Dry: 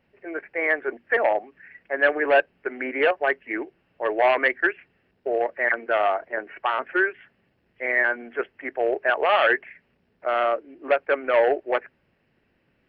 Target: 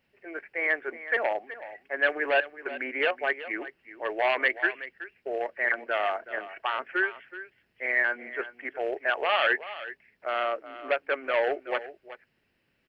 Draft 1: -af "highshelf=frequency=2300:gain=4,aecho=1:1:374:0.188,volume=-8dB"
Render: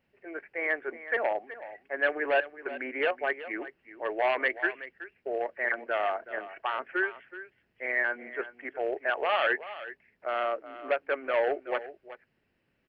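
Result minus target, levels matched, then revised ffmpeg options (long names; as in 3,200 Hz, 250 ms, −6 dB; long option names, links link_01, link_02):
4,000 Hz band −3.0 dB
-af "highshelf=frequency=2300:gain=12.5,aecho=1:1:374:0.188,volume=-8dB"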